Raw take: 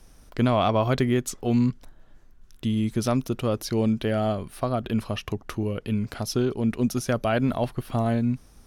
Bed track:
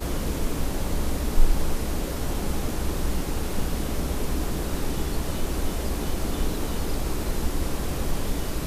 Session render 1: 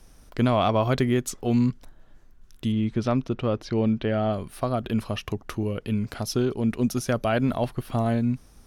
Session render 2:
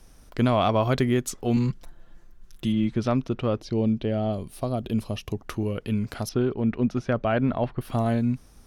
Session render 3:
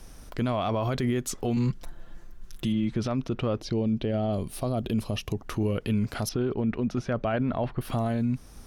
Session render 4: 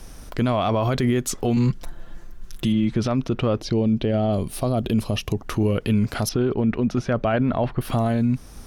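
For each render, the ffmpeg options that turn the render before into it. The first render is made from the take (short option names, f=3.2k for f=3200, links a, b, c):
-filter_complex "[0:a]asettb=1/sr,asplit=3[a][b][c];[a]atrim=end=2.724[d];[b]atrim=start=2.72:end=4.33,asetpts=PTS-STARTPTS,afade=t=in:d=0.004:c=qsin,afade=t=out:st=1.606:d=0.004:c=qsin,lowpass=3.5k[e];[c]atrim=start=4.326[f];[d][e]acrossfade=d=0.004:c1=hsin:c2=qsin[g];[g][f]acrossfade=d=0.004:c1=qsin:c2=hsin"
-filter_complex "[0:a]asettb=1/sr,asplit=3[a][b][c];[a]atrim=end=1.564[d];[b]atrim=start=1.56:end=2.92,asetpts=PTS-STARTPTS,afade=t=in:d=0.004:c=qsin,afade=t=out:st=1.356:d=0.004:c=qsin,aecho=1:1:5.8:0.65,atrim=end_sample=59976[e];[c]atrim=start=2.916[f];[d][e]acrossfade=d=0.004:c1=hsin:c2=qsin[g];[g][f]acrossfade=d=0.004:c1=qsin:c2=hsin,asettb=1/sr,asplit=3[h][i][j];[h]atrim=end=3.604[k];[i]atrim=start=3.6:end=5.35,asetpts=PTS-STARTPTS,afade=t=in:d=0.004:c=qsin,afade=t=out:st=1.746:d=0.004:c=qsin,equalizer=f=1.5k:w=0.98:g=-10.5[l];[j]atrim=start=5.346[m];[k][l]acrossfade=d=0.004:c1=hsin:c2=qsin[n];[n][m]acrossfade=d=0.004:c1=qsin:c2=hsin,asettb=1/sr,asplit=3[o][p][q];[o]atrim=end=6.294[r];[p]atrim=start=6.29:end=7.81,asetpts=PTS-STARTPTS,afade=t=in:d=0.004:c=qsin,afade=t=out:st=1.516:d=0.004:c=qsin,lowpass=2.6k[s];[q]atrim=start=7.806[t];[r][s]acrossfade=d=0.004:c1=hsin:c2=qsin[u];[u][t]acrossfade=d=0.004:c1=qsin:c2=hsin"
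-filter_complex "[0:a]asplit=2[a][b];[b]acompressor=threshold=-33dB:ratio=6,volume=-1dB[c];[a][c]amix=inputs=2:normalize=0,alimiter=limit=-19dB:level=0:latency=1:release=31"
-af "volume=6dB"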